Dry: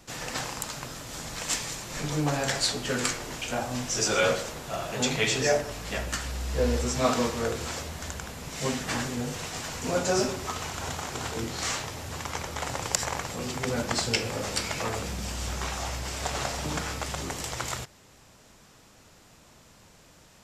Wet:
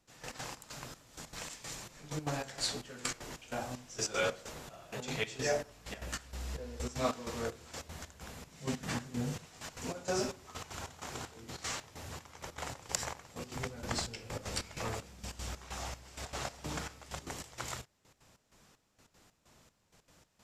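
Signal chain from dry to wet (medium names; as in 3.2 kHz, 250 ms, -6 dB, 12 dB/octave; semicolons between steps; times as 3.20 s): 13.56–14.95 s: bass shelf 91 Hz +10 dB; trance gate "...x.xx..xxx" 192 bpm -12 dB; 8.51–9.46 s: peaking EQ 160 Hz +8 dB 1.3 oct; trim -8 dB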